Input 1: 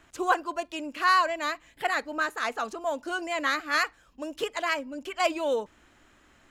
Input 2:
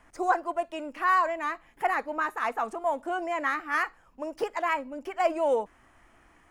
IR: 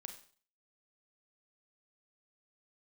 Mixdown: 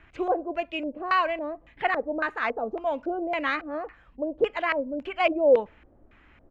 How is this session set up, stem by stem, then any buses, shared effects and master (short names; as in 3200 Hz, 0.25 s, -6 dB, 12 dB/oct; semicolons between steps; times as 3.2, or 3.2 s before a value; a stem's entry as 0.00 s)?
-2.5 dB, 0.00 s, no send, low shelf 170 Hz +11 dB
-11.0 dB, 0.4 ms, send -4.5 dB, dry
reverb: on, RT60 0.45 s, pre-delay 31 ms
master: LFO low-pass square 1.8 Hz 550–2400 Hz